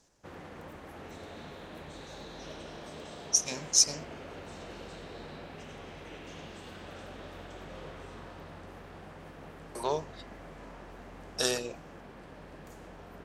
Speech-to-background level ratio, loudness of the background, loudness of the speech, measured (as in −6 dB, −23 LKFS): 18.5 dB, −46.5 LKFS, −28.0 LKFS